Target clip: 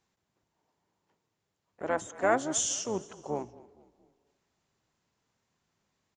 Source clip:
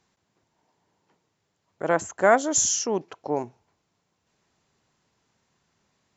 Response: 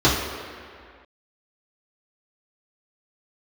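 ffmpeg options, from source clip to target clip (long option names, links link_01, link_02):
-filter_complex "[0:a]asplit=3[link_01][link_02][link_03];[link_02]asetrate=22050,aresample=44100,atempo=2,volume=-12dB[link_04];[link_03]asetrate=55563,aresample=44100,atempo=0.793701,volume=-14dB[link_05];[link_01][link_04][link_05]amix=inputs=3:normalize=0,asplit=4[link_06][link_07][link_08][link_09];[link_07]adelay=230,afreqshift=-35,volume=-20.5dB[link_10];[link_08]adelay=460,afreqshift=-70,volume=-27.6dB[link_11];[link_09]adelay=690,afreqshift=-105,volume=-34.8dB[link_12];[link_06][link_10][link_11][link_12]amix=inputs=4:normalize=0,asplit=2[link_13][link_14];[1:a]atrim=start_sample=2205,adelay=12[link_15];[link_14][link_15]afir=irnorm=-1:irlink=0,volume=-42dB[link_16];[link_13][link_16]amix=inputs=2:normalize=0,volume=-8dB"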